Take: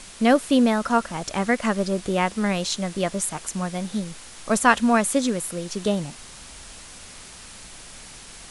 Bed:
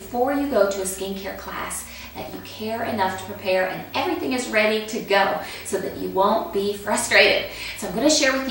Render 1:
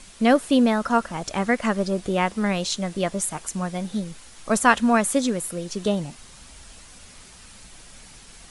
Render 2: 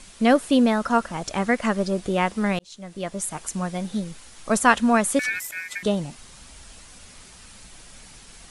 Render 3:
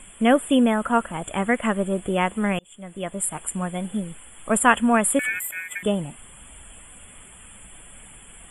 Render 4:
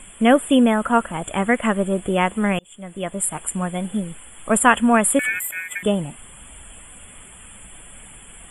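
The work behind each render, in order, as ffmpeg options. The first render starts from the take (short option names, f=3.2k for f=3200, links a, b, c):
-af "afftdn=nr=6:nf=-43"
-filter_complex "[0:a]asettb=1/sr,asplit=3[a][b][c];[a]atrim=end=5.194[d];[b]atrim=start=5.19:end=5.83,asetpts=PTS-STARTPTS,afade=t=in:d=0.004:c=qsin,afade=t=out:st=0.636:d=0.004:c=qsin,aeval=exprs='val(0)*sin(2*PI*2000*n/s)':c=same[e];[c]atrim=start=5.826[f];[d][e]acrossfade=d=0.004:c1=hsin:c2=qsin[g];[g][f]acrossfade=d=0.004:c1=qsin:c2=hsin,asplit=2[h][i];[h]atrim=end=2.59,asetpts=PTS-STARTPTS,afade=t=out:st=2.586:d=0.004:c=hsin[j];[i]atrim=start=2.59,asetpts=PTS-STARTPTS,afade=t=in:d=0.88[k];[j][k]concat=n=2:v=0:a=1"
-af "afftfilt=real='re*(1-between(b*sr/4096,3500,7100))':imag='im*(1-between(b*sr/4096,3500,7100))':win_size=4096:overlap=0.75,highshelf=f=7k:g=6"
-af "volume=3dB,alimiter=limit=-2dB:level=0:latency=1"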